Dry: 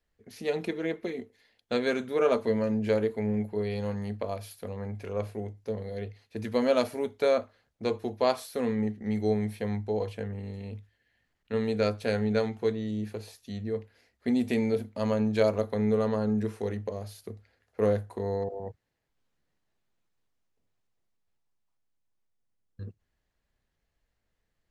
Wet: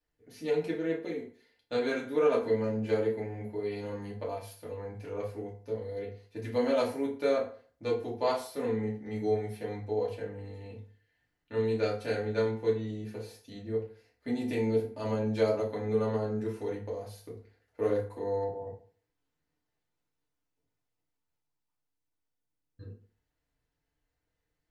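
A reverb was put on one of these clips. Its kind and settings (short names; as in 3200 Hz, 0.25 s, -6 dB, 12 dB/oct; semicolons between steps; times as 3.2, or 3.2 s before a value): FDN reverb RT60 0.44 s, low-frequency decay 0.95×, high-frequency decay 0.7×, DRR -5.5 dB; gain -9.5 dB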